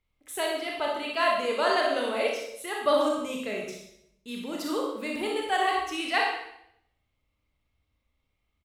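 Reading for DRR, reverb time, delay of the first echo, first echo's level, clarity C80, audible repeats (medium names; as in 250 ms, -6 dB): -2.0 dB, 0.75 s, 62 ms, -7.0 dB, 4.5 dB, 1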